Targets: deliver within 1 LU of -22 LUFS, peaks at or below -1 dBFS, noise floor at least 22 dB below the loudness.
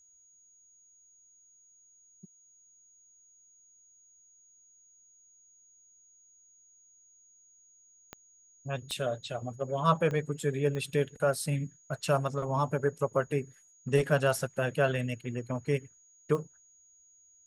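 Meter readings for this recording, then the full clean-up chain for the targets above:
clicks 5; steady tone 6700 Hz; tone level -59 dBFS; loudness -31.0 LUFS; peak -11.5 dBFS; loudness target -22.0 LUFS
-> de-click; notch 6700 Hz, Q 30; gain +9 dB

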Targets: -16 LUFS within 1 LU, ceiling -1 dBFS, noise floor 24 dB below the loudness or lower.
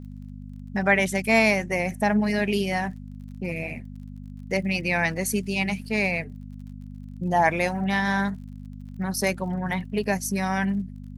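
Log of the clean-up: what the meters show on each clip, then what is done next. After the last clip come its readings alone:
ticks 41/s; hum 50 Hz; harmonics up to 250 Hz; hum level -37 dBFS; loudness -25.0 LUFS; peak -6.0 dBFS; loudness target -16.0 LUFS
-> de-click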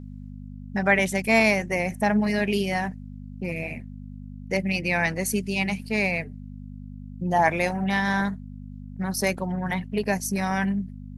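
ticks 0.18/s; hum 50 Hz; harmonics up to 250 Hz; hum level -37 dBFS
-> de-hum 50 Hz, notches 5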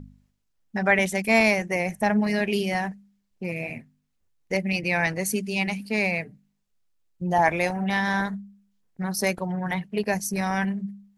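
hum none; loudness -25.0 LUFS; peak -6.5 dBFS; loudness target -16.0 LUFS
-> gain +9 dB; limiter -1 dBFS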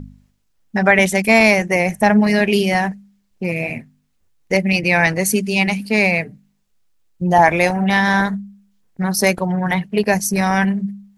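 loudness -16.5 LUFS; peak -1.0 dBFS; noise floor -64 dBFS

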